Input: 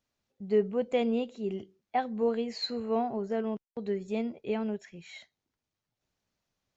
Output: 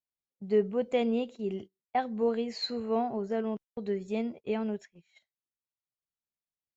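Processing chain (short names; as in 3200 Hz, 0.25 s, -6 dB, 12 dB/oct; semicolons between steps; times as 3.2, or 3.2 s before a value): gate -43 dBFS, range -22 dB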